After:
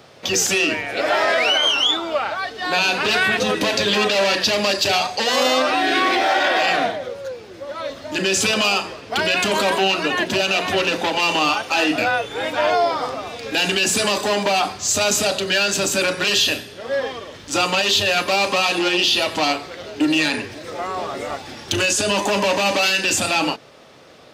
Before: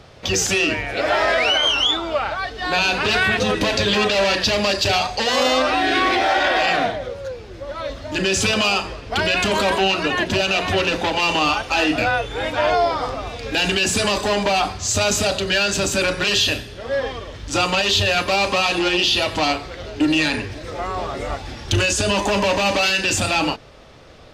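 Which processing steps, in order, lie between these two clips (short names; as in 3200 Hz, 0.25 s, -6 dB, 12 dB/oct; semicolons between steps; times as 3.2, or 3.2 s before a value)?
HPF 170 Hz 12 dB/oct; high shelf 12000 Hz +11 dB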